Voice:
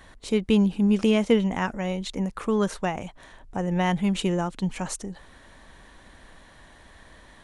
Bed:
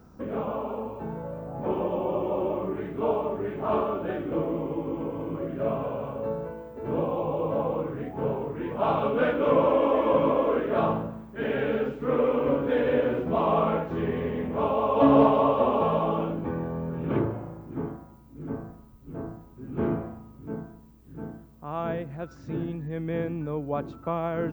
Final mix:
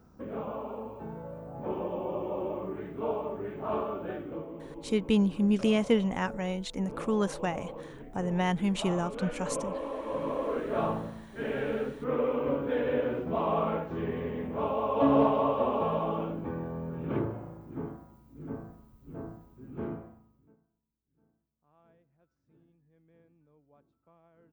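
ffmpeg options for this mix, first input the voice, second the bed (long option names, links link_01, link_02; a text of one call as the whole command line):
ffmpeg -i stem1.wav -i stem2.wav -filter_complex "[0:a]adelay=4600,volume=-4.5dB[link_01];[1:a]volume=2.5dB,afade=type=out:start_time=4.14:duration=0.32:silence=0.421697,afade=type=in:start_time=10.04:duration=0.72:silence=0.375837,afade=type=out:start_time=19.34:duration=1.22:silence=0.0354813[link_02];[link_01][link_02]amix=inputs=2:normalize=0" out.wav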